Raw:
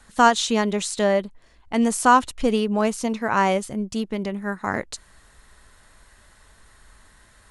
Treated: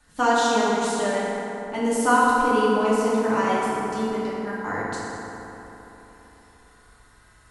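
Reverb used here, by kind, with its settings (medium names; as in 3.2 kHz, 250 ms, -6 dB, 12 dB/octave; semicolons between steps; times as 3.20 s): FDN reverb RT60 3.6 s, high-frequency decay 0.45×, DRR -8 dB; trim -9.5 dB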